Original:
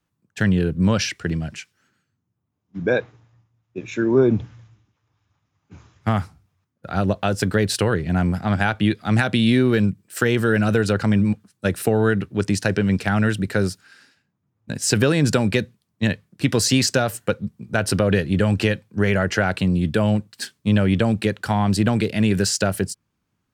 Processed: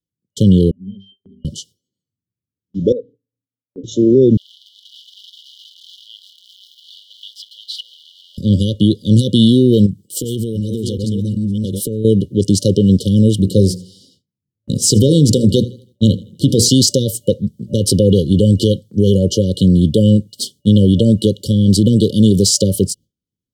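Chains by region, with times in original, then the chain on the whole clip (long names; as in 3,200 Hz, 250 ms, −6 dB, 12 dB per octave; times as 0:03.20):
0:00.71–0:01.45: formant filter i + resonances in every octave G, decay 0.24 s
0:02.92–0:03.84: pair of resonant band-passes 350 Hz, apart 0.74 octaves + downward compressor 2 to 1, threshold −33 dBFS
0:04.37–0:08.38: converter with a step at zero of −22.5 dBFS + Chebyshev high-pass filter 1,100 Hz, order 6 + high-frequency loss of the air 380 metres
0:09.86–0:12.05: delay that plays each chunk backwards 372 ms, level −4 dB + downward compressor 12 to 1, threshold −22 dBFS + dynamic equaliser 660 Hz, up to −7 dB, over −42 dBFS, Q 0.84
0:13.39–0:16.69: low-shelf EQ 180 Hz +5 dB + mains-hum notches 60/120/180/240/300/360/420/480/540/600 Hz + feedback echo with a swinging delay time 81 ms, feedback 37%, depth 54 cents, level −21.5 dB
whole clip: brick-wall band-stop 580–2,900 Hz; noise gate with hold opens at −48 dBFS; boost into a limiter +10 dB; level −1 dB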